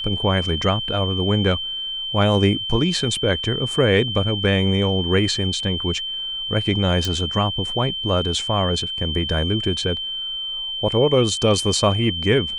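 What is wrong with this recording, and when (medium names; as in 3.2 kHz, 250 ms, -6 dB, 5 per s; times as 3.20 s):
whine 3.1 kHz -25 dBFS
7.05 s: pop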